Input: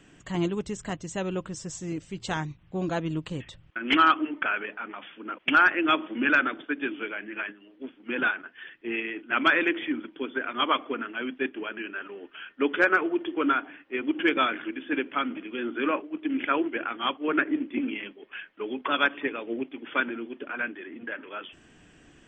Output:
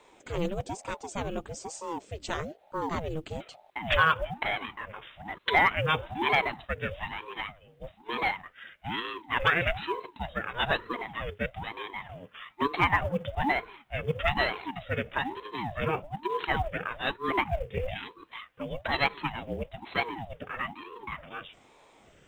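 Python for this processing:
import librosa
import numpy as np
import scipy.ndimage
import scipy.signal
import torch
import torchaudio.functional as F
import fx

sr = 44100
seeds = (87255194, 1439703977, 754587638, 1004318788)

y = fx.quant_companded(x, sr, bits=8)
y = fx.ring_lfo(y, sr, carrier_hz=450.0, swing_pct=65, hz=1.1)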